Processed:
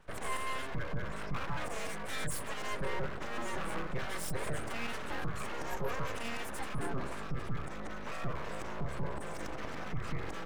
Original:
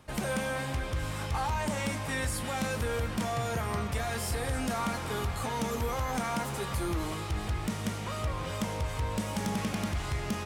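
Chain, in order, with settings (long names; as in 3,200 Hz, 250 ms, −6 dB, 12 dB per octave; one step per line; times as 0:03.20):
gate on every frequency bin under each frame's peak −25 dB strong
phaser with its sweep stopped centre 810 Hz, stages 6
full-wave rectification
level +1 dB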